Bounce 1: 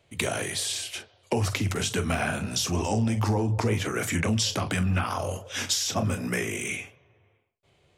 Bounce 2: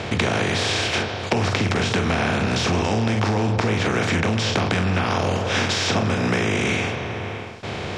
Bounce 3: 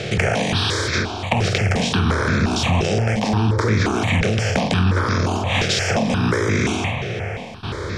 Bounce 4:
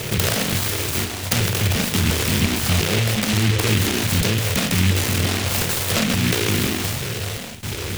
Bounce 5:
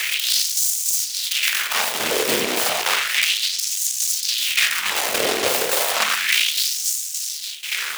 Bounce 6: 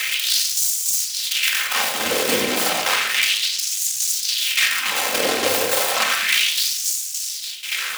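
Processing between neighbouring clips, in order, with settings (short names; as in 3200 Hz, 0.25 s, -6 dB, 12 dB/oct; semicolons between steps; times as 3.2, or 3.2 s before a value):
per-bin compression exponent 0.4; LPF 3800 Hz 12 dB/oct; compressor, threshold -24 dBFS, peak gain reduction 7.5 dB; gain +6.5 dB
low shelf 65 Hz +7.5 dB; step phaser 5.7 Hz 260–2900 Hz; gain +4.5 dB
self-modulated delay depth 0.68 ms; reverse; upward compressor, threshold -29 dBFS; reverse; noise-modulated delay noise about 2500 Hz, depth 0.31 ms
limiter -12 dBFS, peak gain reduction 9 dB; tremolo saw down 3.5 Hz, depth 50%; LFO high-pass sine 0.32 Hz 440–6800 Hz; gain +5.5 dB
reverb RT60 0.85 s, pre-delay 4 ms, DRR 3 dB; gain -1 dB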